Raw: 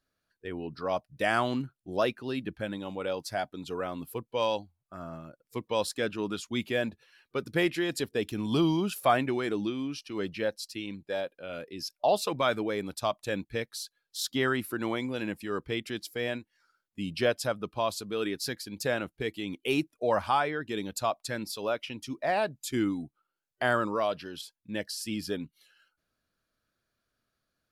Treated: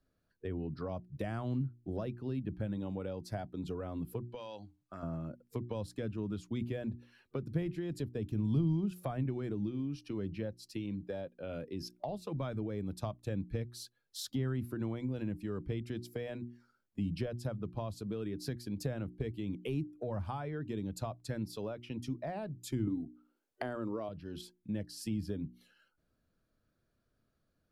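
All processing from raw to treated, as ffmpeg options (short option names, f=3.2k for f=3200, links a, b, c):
-filter_complex "[0:a]asettb=1/sr,asplit=3[a][b][c];[a]atrim=end=4.234[d];[b]atrim=start=4.23:end=5.03,asetpts=PTS-STARTPTS,afade=t=in:d=0.004:c=qsin,afade=t=out:st=0.796:d=0.004:c=qsin,lowpass=7.9k,tiltshelf=f=880:g=-6,acompressor=threshold=-40dB:ratio=16:attack=3.2:release=140:knee=1:detection=peak[e];[c]atrim=start=5.026[f];[d][e]acrossfade=d=0.004:c1=hsin:c2=qsin[g];[g][f]acrossfade=d=0.004:c1=qsin:c2=hsin,asettb=1/sr,asplit=3[h][i][j];[h]atrim=end=22.874[k];[i]atrim=start=22.87:end=24.09,asetpts=PTS-STARTPTS,afade=t=in:d=0.004:c=qsin,afade=t=out:st=1.216:d=0.004:c=qsin,acontrast=39,lowshelf=f=210:t=q:w=1.5:g=-12[l];[j]atrim=start=24.086[m];[k][l]acrossfade=d=0.004:c1=hsin:c2=qsin[n];[n][m]acrossfade=d=0.004:c1=qsin:c2=hsin,tiltshelf=f=690:g=7.5,bandreject=f=60:t=h:w=6,bandreject=f=120:t=h:w=6,bandreject=f=180:t=h:w=6,bandreject=f=240:t=h:w=6,bandreject=f=300:t=h:w=6,bandreject=f=360:t=h:w=6,acrossover=split=150[o][p];[p]acompressor=threshold=-39dB:ratio=10[q];[o][q]amix=inputs=2:normalize=0,volume=1dB"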